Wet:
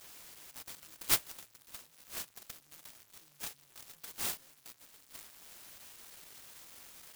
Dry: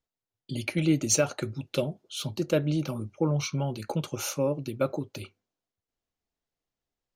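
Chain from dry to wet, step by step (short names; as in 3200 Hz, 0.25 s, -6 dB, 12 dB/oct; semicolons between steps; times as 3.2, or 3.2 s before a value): zero-crossing step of -38.5 dBFS; inverse Chebyshev high-pass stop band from 2800 Hz, stop band 50 dB; clock jitter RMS 0.11 ms; gain +2 dB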